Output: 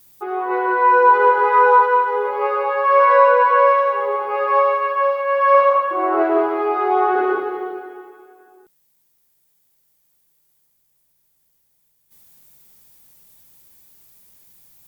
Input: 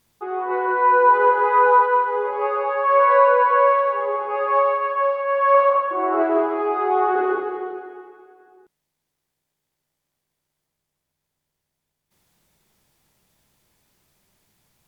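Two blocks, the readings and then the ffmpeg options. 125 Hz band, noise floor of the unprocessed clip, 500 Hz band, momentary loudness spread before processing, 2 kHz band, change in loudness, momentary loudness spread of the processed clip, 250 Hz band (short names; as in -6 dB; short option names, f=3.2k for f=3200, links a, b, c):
n/a, -80 dBFS, +2.0 dB, 10 LU, +3.0 dB, +2.5 dB, 10 LU, +2.0 dB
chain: -af "aemphasis=mode=production:type=50fm,volume=2.5dB"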